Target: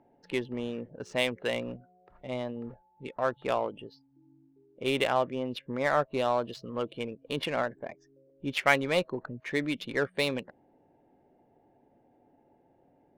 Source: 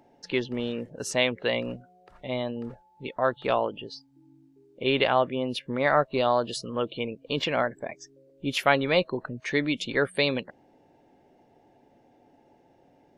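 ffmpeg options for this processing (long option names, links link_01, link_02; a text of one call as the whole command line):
ffmpeg -i in.wav -filter_complex "[0:a]asettb=1/sr,asplit=3[link_01][link_02][link_03];[link_01]atrim=end=7.924[link_04];[link_02]atrim=start=7.92:end=8.78,asetpts=PTS-STARTPTS,afade=type=in:duration=0.004:curve=qsin,afade=type=out:start_time=0.856:duration=0.004:curve=qsin,adynamicequalizer=threshold=0.01:dfrequency=2100:dqfactor=2.3:tfrequency=2100:tqfactor=2.3:attack=5:release=100:ratio=0.375:range=4:mode=boostabove:tftype=bell[link_05];[link_03]atrim=start=8.776[link_06];[link_04][link_05]acrossfade=duration=0.004:curve1=hsin:curve2=qsin[link_07];[link_07][link_06]acrossfade=duration=0.004:curve1=qsin:curve2=hsin,adynamicsmooth=sensitivity=3:basefreq=2000,volume=-4dB" out.wav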